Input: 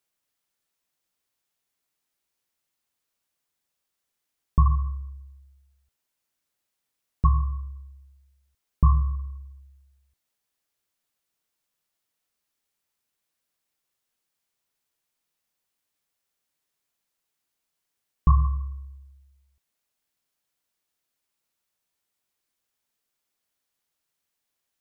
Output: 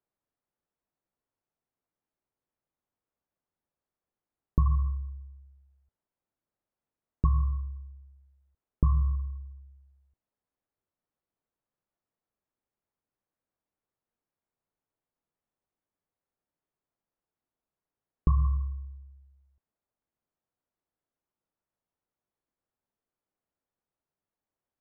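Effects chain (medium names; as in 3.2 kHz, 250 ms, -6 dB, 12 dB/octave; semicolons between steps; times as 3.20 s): Bessel low-pass 840 Hz, order 2; compression, threshold -19 dBFS, peak gain reduction 7 dB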